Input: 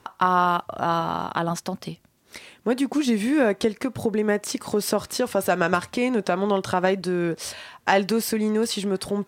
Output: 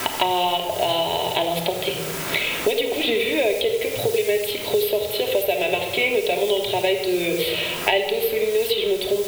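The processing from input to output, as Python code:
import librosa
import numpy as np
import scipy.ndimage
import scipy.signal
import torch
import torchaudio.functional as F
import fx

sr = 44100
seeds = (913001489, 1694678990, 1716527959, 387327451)

p1 = fx.curve_eq(x, sr, hz=(120.0, 180.0, 290.0, 410.0, 900.0, 1300.0, 2200.0, 3700.0, 6200.0, 13000.0), db=(0, -16, -20, 6, -4, -29, 8, 12, -25, 10))
p2 = fx.rider(p1, sr, range_db=4, speed_s=0.5)
p3 = p1 + F.gain(torch.from_numpy(p2), -3.0).numpy()
p4 = fx.quant_dither(p3, sr, seeds[0], bits=6, dither='triangular')
p5 = fx.room_shoebox(p4, sr, seeds[1], volume_m3=2900.0, walls='furnished', distance_m=2.9)
p6 = fx.band_squash(p5, sr, depth_pct=100)
y = F.gain(torch.from_numpy(p6), -6.0).numpy()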